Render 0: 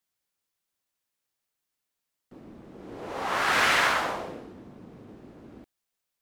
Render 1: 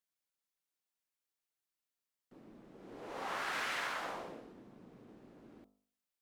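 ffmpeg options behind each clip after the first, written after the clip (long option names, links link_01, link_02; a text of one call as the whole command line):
ffmpeg -i in.wav -af "equalizer=frequency=77:width_type=o:width=1:gain=-10,acompressor=threshold=-27dB:ratio=4,bandreject=frequency=50.62:width_type=h:width=4,bandreject=frequency=101.24:width_type=h:width=4,bandreject=frequency=151.86:width_type=h:width=4,bandreject=frequency=202.48:width_type=h:width=4,bandreject=frequency=253.1:width_type=h:width=4,bandreject=frequency=303.72:width_type=h:width=4,bandreject=frequency=354.34:width_type=h:width=4,bandreject=frequency=404.96:width_type=h:width=4,bandreject=frequency=455.58:width_type=h:width=4,bandreject=frequency=506.2:width_type=h:width=4,bandreject=frequency=556.82:width_type=h:width=4,bandreject=frequency=607.44:width_type=h:width=4,bandreject=frequency=658.06:width_type=h:width=4,bandreject=frequency=708.68:width_type=h:width=4,bandreject=frequency=759.3:width_type=h:width=4,bandreject=frequency=809.92:width_type=h:width=4,bandreject=frequency=860.54:width_type=h:width=4,bandreject=frequency=911.16:width_type=h:width=4,bandreject=frequency=961.78:width_type=h:width=4,bandreject=frequency=1012.4:width_type=h:width=4,bandreject=frequency=1063.02:width_type=h:width=4,bandreject=frequency=1113.64:width_type=h:width=4,bandreject=frequency=1164.26:width_type=h:width=4,bandreject=frequency=1214.88:width_type=h:width=4,bandreject=frequency=1265.5:width_type=h:width=4,bandreject=frequency=1316.12:width_type=h:width=4,volume=-8.5dB" out.wav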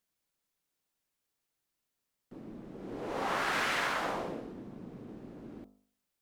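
ffmpeg -i in.wav -af "lowshelf=frequency=440:gain=7.5,volume=5.5dB" out.wav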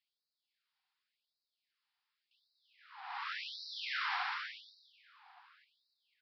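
ffmpeg -i in.wav -af "aresample=11025,asoftclip=type=tanh:threshold=-34.5dB,aresample=44100,aecho=1:1:290|493|635.1|734.6|804.2:0.631|0.398|0.251|0.158|0.1,afftfilt=real='re*gte(b*sr/1024,690*pow(3800/690,0.5+0.5*sin(2*PI*0.89*pts/sr)))':imag='im*gte(b*sr/1024,690*pow(3800/690,0.5+0.5*sin(2*PI*0.89*pts/sr)))':win_size=1024:overlap=0.75,volume=2dB" out.wav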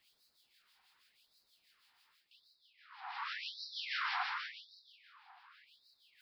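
ffmpeg -i in.wav -filter_complex "[0:a]areverse,acompressor=mode=upward:threshold=-56dB:ratio=2.5,areverse,acrossover=split=2000[link_01][link_02];[link_01]aeval=exprs='val(0)*(1-0.7/2+0.7/2*cos(2*PI*6.2*n/s))':channel_layout=same[link_03];[link_02]aeval=exprs='val(0)*(1-0.7/2-0.7/2*cos(2*PI*6.2*n/s))':channel_layout=same[link_04];[link_03][link_04]amix=inputs=2:normalize=0,volume=3dB" out.wav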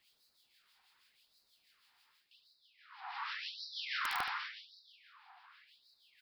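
ffmpeg -i in.wav -af "aeval=exprs='(mod(21.1*val(0)+1,2)-1)/21.1':channel_layout=same,aecho=1:1:74:0.266" out.wav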